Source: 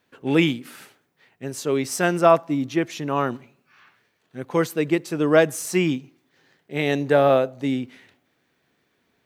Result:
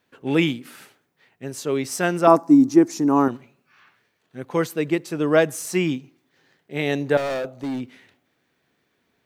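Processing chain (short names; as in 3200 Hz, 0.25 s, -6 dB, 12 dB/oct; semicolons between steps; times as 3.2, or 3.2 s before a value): 2.27–3.28 EQ curve 150 Hz 0 dB, 290 Hz +13 dB, 590 Hz -2 dB, 840 Hz +7 dB, 3200 Hz -13 dB, 4900 Hz +5 dB, 7900 Hz +9 dB, 13000 Hz +5 dB; 7.17–7.81 hard clip -23 dBFS, distortion -14 dB; gain -1 dB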